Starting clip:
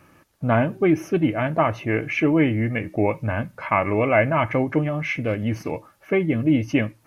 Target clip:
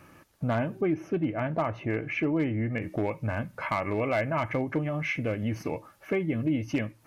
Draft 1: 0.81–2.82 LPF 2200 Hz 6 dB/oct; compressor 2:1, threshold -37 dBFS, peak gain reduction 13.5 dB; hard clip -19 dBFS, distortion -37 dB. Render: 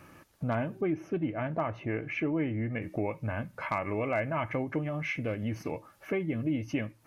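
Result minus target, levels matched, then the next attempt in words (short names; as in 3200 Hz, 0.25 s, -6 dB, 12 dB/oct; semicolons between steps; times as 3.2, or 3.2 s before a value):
compressor: peak gain reduction +3.5 dB
0.81–2.82 LPF 2200 Hz 6 dB/oct; compressor 2:1, threshold -30.5 dBFS, peak gain reduction 10 dB; hard clip -19 dBFS, distortion -25 dB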